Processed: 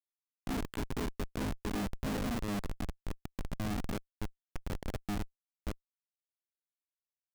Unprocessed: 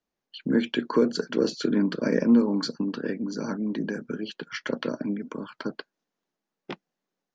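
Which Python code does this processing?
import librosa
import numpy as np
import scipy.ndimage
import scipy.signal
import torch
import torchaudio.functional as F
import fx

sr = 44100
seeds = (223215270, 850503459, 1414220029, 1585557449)

y = fx.resonator_bank(x, sr, root=56, chord='major', decay_s=0.41)
y = fx.spec_gate(y, sr, threshold_db=-25, keep='strong')
y = fx.schmitt(y, sr, flips_db=-42.0)
y = y * 10.0 ** (13.5 / 20.0)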